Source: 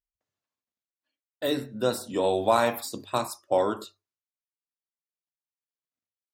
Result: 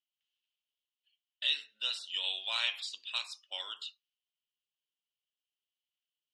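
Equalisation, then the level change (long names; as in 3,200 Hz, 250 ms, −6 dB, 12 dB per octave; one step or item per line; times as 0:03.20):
high-pass with resonance 3,000 Hz, resonance Q 9
low-pass filter 9,600 Hz 12 dB per octave
high-frequency loss of the air 96 metres
−1.5 dB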